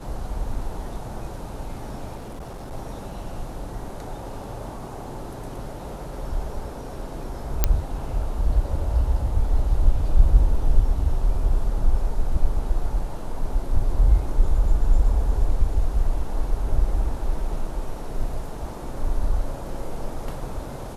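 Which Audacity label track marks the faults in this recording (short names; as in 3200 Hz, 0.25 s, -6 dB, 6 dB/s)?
2.150000	2.730000	clipped -32 dBFS
7.640000	7.640000	pop -3 dBFS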